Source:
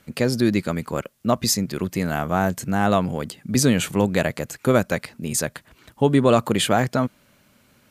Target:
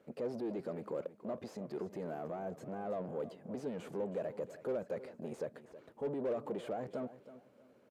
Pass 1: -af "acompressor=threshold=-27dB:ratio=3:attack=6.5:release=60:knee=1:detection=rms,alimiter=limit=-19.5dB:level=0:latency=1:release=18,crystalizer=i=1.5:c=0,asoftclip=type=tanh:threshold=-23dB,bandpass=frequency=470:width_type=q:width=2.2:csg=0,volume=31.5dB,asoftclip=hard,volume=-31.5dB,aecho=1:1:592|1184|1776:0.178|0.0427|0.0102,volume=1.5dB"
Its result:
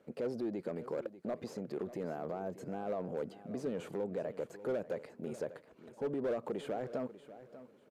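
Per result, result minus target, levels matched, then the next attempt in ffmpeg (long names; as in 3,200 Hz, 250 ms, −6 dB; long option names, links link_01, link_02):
echo 270 ms late; downward compressor: peak gain reduction +12 dB; soft clipping: distortion −5 dB
-af "acompressor=threshold=-27dB:ratio=3:attack=6.5:release=60:knee=1:detection=rms,alimiter=limit=-19.5dB:level=0:latency=1:release=18,crystalizer=i=1.5:c=0,asoftclip=type=tanh:threshold=-23dB,bandpass=frequency=470:width_type=q:width=2.2:csg=0,volume=31.5dB,asoftclip=hard,volume=-31.5dB,aecho=1:1:322|644|966:0.178|0.0427|0.0102,volume=1.5dB"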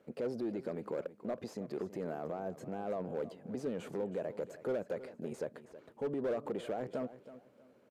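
downward compressor: peak gain reduction +12 dB; soft clipping: distortion −5 dB
-af "alimiter=limit=-19.5dB:level=0:latency=1:release=18,crystalizer=i=1.5:c=0,asoftclip=type=tanh:threshold=-23dB,bandpass=frequency=470:width_type=q:width=2.2:csg=0,volume=31.5dB,asoftclip=hard,volume=-31.5dB,aecho=1:1:322|644|966:0.178|0.0427|0.0102,volume=1.5dB"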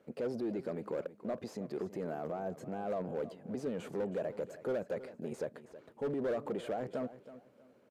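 soft clipping: distortion −5 dB
-af "alimiter=limit=-19.5dB:level=0:latency=1:release=18,crystalizer=i=1.5:c=0,asoftclip=type=tanh:threshold=-29dB,bandpass=frequency=470:width_type=q:width=2.2:csg=0,volume=31.5dB,asoftclip=hard,volume=-31.5dB,aecho=1:1:322|644|966:0.178|0.0427|0.0102,volume=1.5dB"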